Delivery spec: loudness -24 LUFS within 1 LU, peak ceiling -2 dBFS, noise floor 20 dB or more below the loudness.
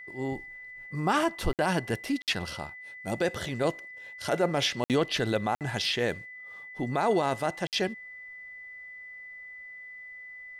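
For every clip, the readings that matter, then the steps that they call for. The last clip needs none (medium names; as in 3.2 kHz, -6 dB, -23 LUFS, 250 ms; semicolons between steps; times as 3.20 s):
dropouts 5; longest dropout 58 ms; steady tone 2 kHz; tone level -42 dBFS; loudness -29.5 LUFS; peak level -15.0 dBFS; loudness target -24.0 LUFS
-> interpolate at 1.53/2.22/4.84/5.55/7.67 s, 58 ms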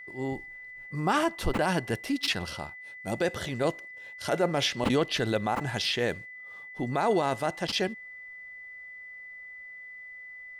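dropouts 0; steady tone 2 kHz; tone level -42 dBFS
-> band-stop 2 kHz, Q 30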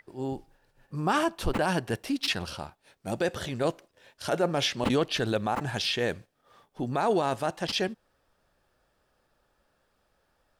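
steady tone not found; loudness -29.0 LUFS; peak level -13.0 dBFS; loudness target -24.0 LUFS
-> trim +5 dB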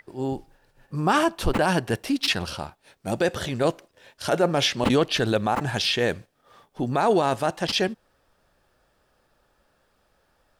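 loudness -24.0 LUFS; peak level -8.0 dBFS; noise floor -68 dBFS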